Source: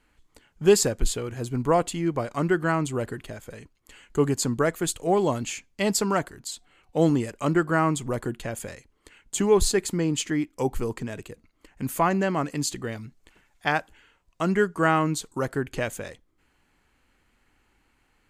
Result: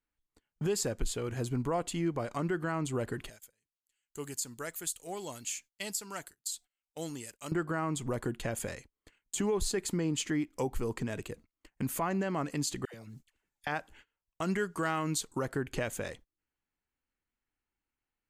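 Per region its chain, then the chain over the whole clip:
0:03.29–0:07.52: first-order pre-emphasis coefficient 0.9 + notch filter 1,100 Hz, Q 14
0:12.85–0:13.67: high-shelf EQ 4,300 Hz +10 dB + downward compressor 10 to 1, threshold −43 dBFS + all-pass dispersion lows, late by 89 ms, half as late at 910 Hz
0:14.42–0:15.25: high-shelf EQ 2,200 Hz +8 dB + hard clipping −9.5 dBFS
whole clip: noise gate −50 dBFS, range −25 dB; downward compressor 2 to 1, threshold −32 dBFS; brickwall limiter −22 dBFS

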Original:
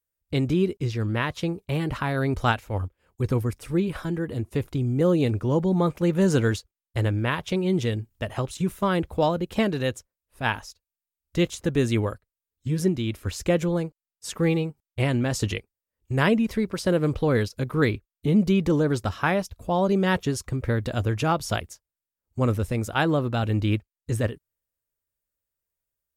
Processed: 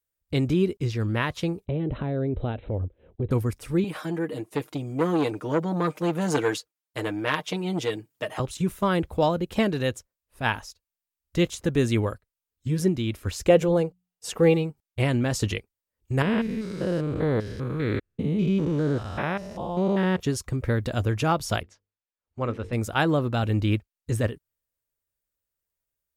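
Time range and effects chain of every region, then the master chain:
0:01.66–0:03.31: low shelf with overshoot 760 Hz +11.5 dB, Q 1.5 + downward compressor 3 to 1, threshold −29 dBFS + linear-phase brick-wall low-pass 4,100 Hz
0:03.84–0:08.40: high-pass filter 240 Hz + comb filter 6.5 ms, depth 72% + saturating transformer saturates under 1,200 Hz
0:13.48–0:14.54: mains-hum notches 60/120/180 Hz + hollow resonant body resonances 480/740/2,800 Hz, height 8 dB, ringing for 20 ms
0:16.22–0:20.20: spectrum averaged block by block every 200 ms + high-shelf EQ 7,300 Hz −9.5 dB
0:21.63–0:22.73: low-pass filter 3,100 Hz + low-shelf EQ 320 Hz −8.5 dB + mains-hum notches 50/100/150/200/250/300/350/400/450/500 Hz
whole clip: no processing

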